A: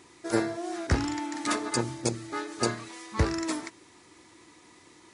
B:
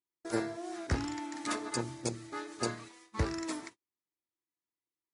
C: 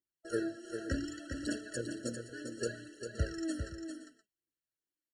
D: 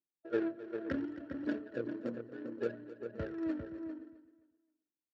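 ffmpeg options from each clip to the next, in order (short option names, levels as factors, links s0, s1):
-af "agate=range=0.01:threshold=0.00794:ratio=16:detection=peak,volume=0.473"
-af "aphaser=in_gain=1:out_gain=1:delay=4.8:decay=0.61:speed=0.67:type=triangular,aecho=1:1:399|520:0.447|0.141,afftfilt=real='re*eq(mod(floor(b*sr/1024/660),2),0)':imag='im*eq(mod(floor(b*sr/1024/660),2),0)':win_size=1024:overlap=0.75,volume=0.668"
-af "adynamicsmooth=sensitivity=4.5:basefreq=600,highpass=180,lowpass=4600,aecho=1:1:262|524|786:0.158|0.0444|0.0124,volume=1.26"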